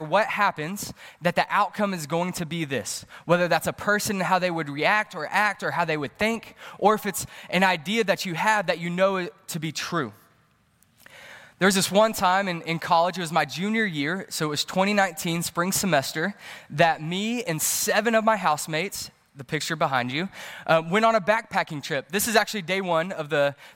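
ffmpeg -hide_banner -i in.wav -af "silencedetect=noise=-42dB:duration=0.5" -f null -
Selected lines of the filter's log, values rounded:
silence_start: 10.15
silence_end: 10.83 | silence_duration: 0.67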